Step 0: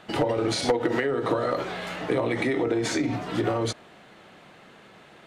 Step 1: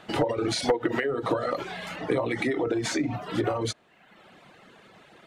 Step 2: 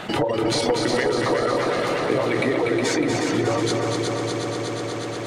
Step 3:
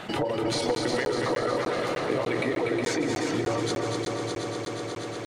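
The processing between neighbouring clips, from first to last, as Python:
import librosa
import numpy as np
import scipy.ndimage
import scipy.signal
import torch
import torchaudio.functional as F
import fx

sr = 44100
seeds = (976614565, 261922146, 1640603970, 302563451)

y1 = fx.dereverb_blind(x, sr, rt60_s=0.91)
y2 = fx.echo_heads(y1, sr, ms=121, heads='second and third', feedback_pct=72, wet_db=-6.0)
y2 = fx.env_flatten(y2, sr, amount_pct=50)
y3 = y2 + 10.0 ** (-13.5 / 20.0) * np.pad(y2, (int(159 * sr / 1000.0), 0))[:len(y2)]
y3 = fx.buffer_crackle(y3, sr, first_s=0.75, period_s=0.3, block=512, kind='zero')
y3 = F.gain(torch.from_numpy(y3), -5.5).numpy()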